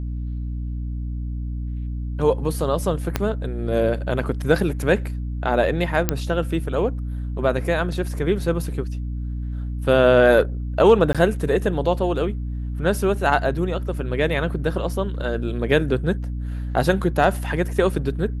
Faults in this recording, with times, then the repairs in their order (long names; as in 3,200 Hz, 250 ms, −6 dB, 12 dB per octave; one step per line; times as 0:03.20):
mains hum 60 Hz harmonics 5 −27 dBFS
0:03.16: click −6 dBFS
0:06.09: click −3 dBFS
0:11.13–0:11.15: drop-out 16 ms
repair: click removal
hum removal 60 Hz, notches 5
repair the gap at 0:11.13, 16 ms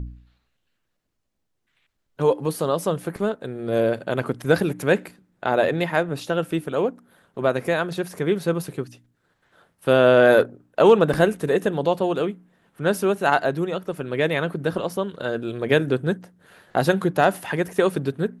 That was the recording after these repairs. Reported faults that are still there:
0:03.16: click